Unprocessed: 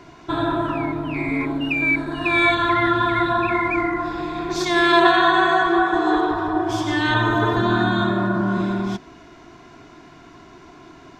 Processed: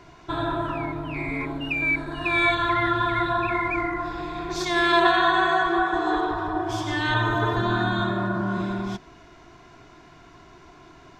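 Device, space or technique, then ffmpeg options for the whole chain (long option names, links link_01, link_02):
low shelf boost with a cut just above: -af "lowshelf=frequency=67:gain=6.5,equalizer=frequency=260:width_type=o:width=0.82:gain=-5.5,volume=-3.5dB"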